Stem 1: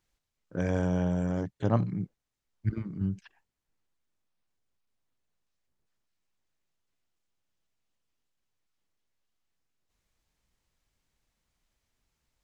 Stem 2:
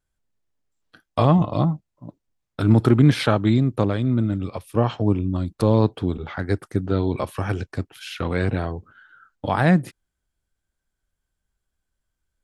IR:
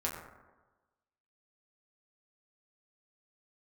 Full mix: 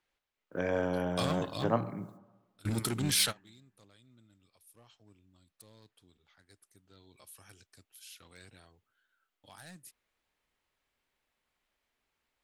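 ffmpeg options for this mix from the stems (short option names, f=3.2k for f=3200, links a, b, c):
-filter_complex "[0:a]acrossover=split=270 3300:gain=0.224 1 0.0794[a][b][c];[a][b][c]amix=inputs=3:normalize=0,volume=-1dB,asplit=3[d][e][f];[e]volume=-13.5dB[g];[1:a]crystalizer=i=8.5:c=0,volume=9.5dB,asoftclip=hard,volume=-9.5dB,volume=-12dB,afade=t=in:st=6.76:d=0.71:silence=0.473151[h];[f]apad=whole_len=548565[i];[h][i]sidechaingate=range=-24dB:threshold=-57dB:ratio=16:detection=peak[j];[2:a]atrim=start_sample=2205[k];[g][k]afir=irnorm=-1:irlink=0[l];[d][j][l]amix=inputs=3:normalize=0,highshelf=f=3.6k:g=11.5"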